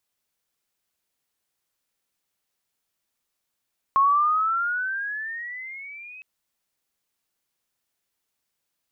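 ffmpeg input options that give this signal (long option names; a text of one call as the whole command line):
ffmpeg -f lavfi -i "aevalsrc='pow(10,(-14.5-25*t/2.26)/20)*sin(2*PI*1080*2.26/(15*log(2)/12)*(exp(15*log(2)/12*t/2.26)-1))':duration=2.26:sample_rate=44100" out.wav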